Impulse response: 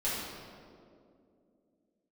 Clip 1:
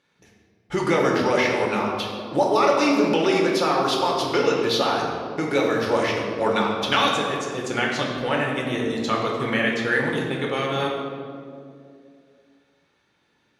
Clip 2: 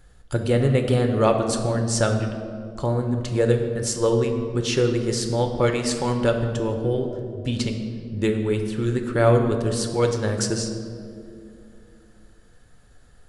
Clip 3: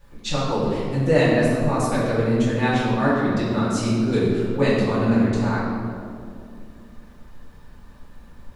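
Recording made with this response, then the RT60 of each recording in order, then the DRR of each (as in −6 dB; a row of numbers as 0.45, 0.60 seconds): 3; 2.5, 2.5, 2.5 seconds; −2.5, 4.0, −10.5 decibels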